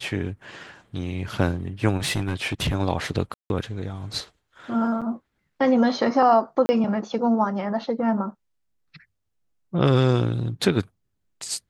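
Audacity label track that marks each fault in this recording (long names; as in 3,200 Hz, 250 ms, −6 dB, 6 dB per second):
2.040000	2.740000	clipping −19 dBFS
3.340000	3.500000	drop-out 161 ms
5.010000	5.020000	drop-out 6.5 ms
6.660000	6.690000	drop-out 30 ms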